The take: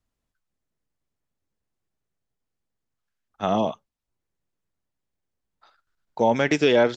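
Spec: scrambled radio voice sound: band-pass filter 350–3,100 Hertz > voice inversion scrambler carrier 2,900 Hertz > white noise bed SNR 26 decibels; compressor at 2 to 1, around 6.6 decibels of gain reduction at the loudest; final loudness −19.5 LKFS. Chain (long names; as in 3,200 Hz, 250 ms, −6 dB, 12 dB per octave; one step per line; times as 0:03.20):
downward compressor 2 to 1, threshold −26 dBFS
band-pass filter 350–3,100 Hz
voice inversion scrambler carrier 2,900 Hz
white noise bed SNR 26 dB
level +7.5 dB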